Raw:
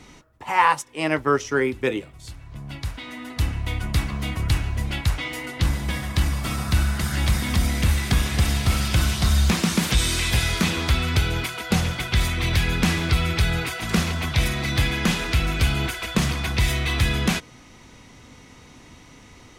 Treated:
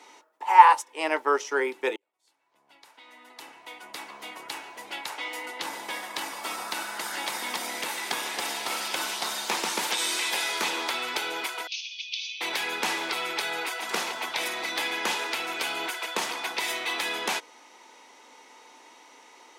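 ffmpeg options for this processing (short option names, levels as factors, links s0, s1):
-filter_complex "[0:a]asettb=1/sr,asplit=3[s0][s1][s2];[s0]atrim=end=11.674[s3];[s1]atrim=start=11.67:end=12.41,asetpts=PTS-STARTPTS,afade=t=in:d=0.004:c=qsin,afade=t=out:st=0.736:d=0.004:c=qsin,asuperpass=centerf=3900:order=20:qfactor=1[s4];[s2]atrim=start=12.406[s5];[s3][s4]acrossfade=d=0.004:c1=hsin:c2=qsin[s6];[s6][s5]acrossfade=d=0.004:c1=qsin:c2=hsin,asplit=2[s7][s8];[s7]atrim=end=1.96,asetpts=PTS-STARTPTS,afade=t=out:st=1.956:d=0.004:c=hsin[s9];[s8]atrim=start=1.96,asetpts=PTS-STARTPTS,afade=t=in:d=3.77[s10];[s9][s10]concat=n=2:v=0:a=1,highpass=f=370:w=0.5412,highpass=f=370:w=1.3066,equalizer=f=890:w=6.8:g=11.5,volume=0.708"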